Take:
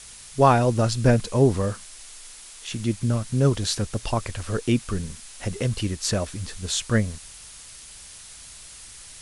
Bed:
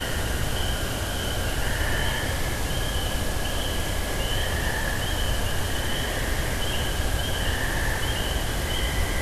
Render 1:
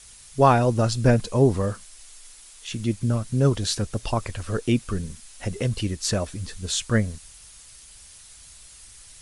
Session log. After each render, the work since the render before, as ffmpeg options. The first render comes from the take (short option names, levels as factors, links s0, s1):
-af "afftdn=nr=6:nf=-44"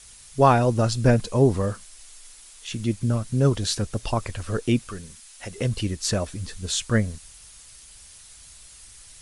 -filter_complex "[0:a]asettb=1/sr,asplit=3[s0][s1][s2];[s0]atrim=end=4.874[s3];[s1]atrim=start=4.87:end=5.58,asetpts=PTS-STARTPTS,afade=t=in:d=0.004:c=qsin,afade=t=out:st=0.706:d=0.004:c=qsin,lowshelf=f=450:g=-11[s4];[s2]atrim=start=5.576[s5];[s3][s4]acrossfade=d=0.004:c1=hsin:c2=qsin[s6];[s6][s5]acrossfade=d=0.004:c1=qsin:c2=hsin"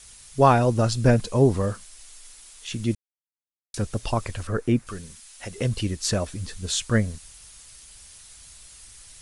-filter_complex "[0:a]asettb=1/sr,asplit=3[s0][s1][s2];[s0]atrim=end=4.474[s3];[s1]atrim=start=4.47:end=4.87,asetpts=PTS-STARTPTS,afade=t=in:d=0.004:c=qsin,afade=t=out:st=0.396:d=0.004:c=qsin,highshelf=f=2300:t=q:w=1.5:g=-8[s4];[s2]atrim=start=4.866[s5];[s3][s4]acrossfade=d=0.004:c1=hsin:c2=qsin[s6];[s6][s5]acrossfade=d=0.004:c1=qsin:c2=hsin,asplit=3[s7][s8][s9];[s7]atrim=end=2.95,asetpts=PTS-STARTPTS,afade=t=out:st=2.946:d=0.004:c=hsin[s10];[s8]atrim=start=2.95:end=3.74,asetpts=PTS-STARTPTS,volume=0[s11];[s9]atrim=start=3.74,asetpts=PTS-STARTPTS,afade=t=in:d=0.004:c=hsin[s12];[s10][s11][s12]concat=n=3:v=0:a=1"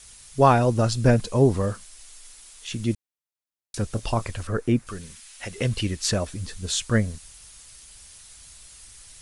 -filter_complex "[0:a]asettb=1/sr,asplit=3[s0][s1][s2];[s0]atrim=end=3.874[s3];[s1]atrim=start=3.87:end=4.3,asetpts=PTS-STARTPTS,afade=t=in:d=0.004:c=qsin,afade=t=out:st=0.426:d=0.004:c=qsin,asplit=2[s4][s5];[s5]adelay=27,volume=0.2[s6];[s4][s6]amix=inputs=2:normalize=0,atrim=end_sample=18963[s7];[s2]atrim=start=4.296[s8];[s3][s7]acrossfade=d=0.004:c1=hsin:c2=qsin[s9];[s9][s8]acrossfade=d=0.004:c1=qsin:c2=hsin,asettb=1/sr,asplit=3[s10][s11][s12];[s10]atrim=end=5.014[s13];[s11]atrim=start=5.01:end=6.12,asetpts=PTS-STARTPTS,afade=t=in:d=0.004:c=qsin,afade=t=out:st=1.106:d=0.004:c=qsin,equalizer=f=2300:t=o:w=1.6:g=4.5[s14];[s12]atrim=start=6.116[s15];[s13][s14]acrossfade=d=0.004:c1=hsin:c2=qsin[s16];[s16][s15]acrossfade=d=0.004:c1=qsin:c2=hsin"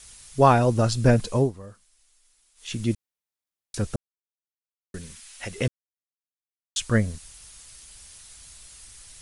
-filter_complex "[0:a]asplit=7[s0][s1][s2][s3][s4][s5][s6];[s0]atrim=end=1.52,asetpts=PTS-STARTPTS,afade=t=out:st=1.36:d=0.16:silence=0.141254[s7];[s1]atrim=start=1.52:end=2.55,asetpts=PTS-STARTPTS,volume=0.141[s8];[s2]atrim=start=2.55:end=3.96,asetpts=PTS-STARTPTS,afade=t=in:d=0.16:silence=0.141254,afade=t=out:st=1.406:d=0.004:c=hsin[s9];[s3]atrim=start=3.96:end=4.94,asetpts=PTS-STARTPTS,volume=0[s10];[s4]atrim=start=4.94:end=5.68,asetpts=PTS-STARTPTS,afade=t=in:d=0.004:c=hsin,afade=t=out:st=0.736:d=0.004:c=hsin[s11];[s5]atrim=start=5.68:end=6.76,asetpts=PTS-STARTPTS,volume=0[s12];[s6]atrim=start=6.76,asetpts=PTS-STARTPTS,afade=t=in:d=0.004:c=hsin[s13];[s7][s8][s9][s10][s11][s12][s13]concat=n=7:v=0:a=1"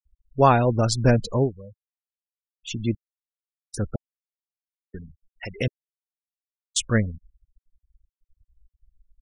-af "afftfilt=real='re*gte(hypot(re,im),0.0251)':imag='im*gte(hypot(re,im),0.0251)':win_size=1024:overlap=0.75,highshelf=f=5000:g=7.5"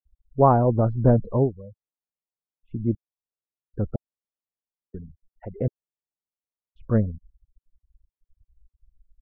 -af "lowpass=f=1100:w=0.5412,lowpass=f=1100:w=1.3066,aemphasis=mode=reproduction:type=75fm"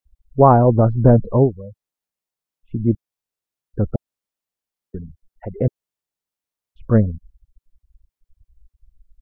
-af "volume=2.11,alimiter=limit=0.891:level=0:latency=1"